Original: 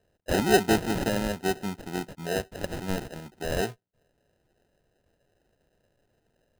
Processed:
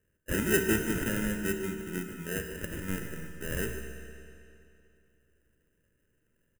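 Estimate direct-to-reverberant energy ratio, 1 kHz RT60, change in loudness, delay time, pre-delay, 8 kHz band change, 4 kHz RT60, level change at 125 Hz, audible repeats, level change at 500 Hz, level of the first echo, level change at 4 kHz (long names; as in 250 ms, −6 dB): 4.0 dB, 2.7 s, −3.5 dB, 148 ms, 13 ms, 0.0 dB, 2.4 s, −2.5 dB, 1, −6.0 dB, −13.0 dB, −7.5 dB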